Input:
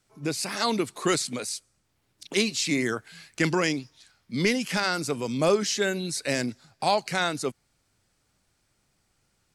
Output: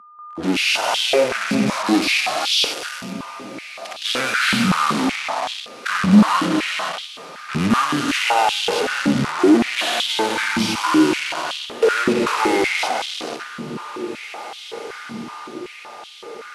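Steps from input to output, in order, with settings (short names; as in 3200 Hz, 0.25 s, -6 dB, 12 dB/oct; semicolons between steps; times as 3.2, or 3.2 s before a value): bell 2500 Hz +2.5 dB 0.29 oct; non-linear reverb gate 0.33 s flat, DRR 7.5 dB; in parallel at +2 dB: compressor, threshold -31 dBFS, peak gain reduction 13.5 dB; on the sum: fuzz box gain 32 dB, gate -32 dBFS; harmonic-percussive split percussive -8 dB; on a send: diffused feedback echo 1.193 s, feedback 57%, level -14 dB; on the sum: whine 2100 Hz -41 dBFS; speed mistake 78 rpm record played at 45 rpm; stepped high-pass 5.3 Hz 210–3300 Hz; gain -2 dB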